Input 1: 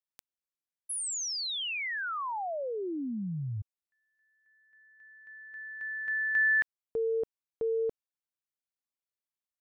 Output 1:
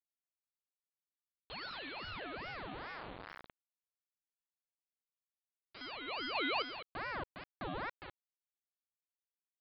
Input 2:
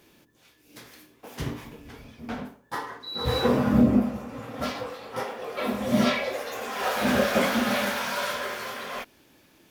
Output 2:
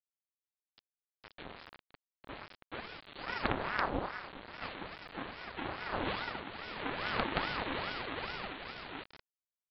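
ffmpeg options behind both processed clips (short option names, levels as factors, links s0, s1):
-filter_complex "[0:a]aeval=exprs='if(lt(val(0),0),0.251*val(0),val(0))':c=same,highpass=f=800:p=1,equalizer=f=2600:w=0.51:g=-7,asplit=2[s0][s1];[s1]aecho=0:1:204|408|612:0.282|0.0564|0.0113[s2];[s0][s2]amix=inputs=2:normalize=0,acontrast=26,aresample=8000,acrusher=bits=4:dc=4:mix=0:aa=0.000001,aresample=44100,aeval=exprs='val(0)*sin(2*PI*880*n/s+880*0.7/2.4*sin(2*PI*2.4*n/s))':c=same,volume=0.891"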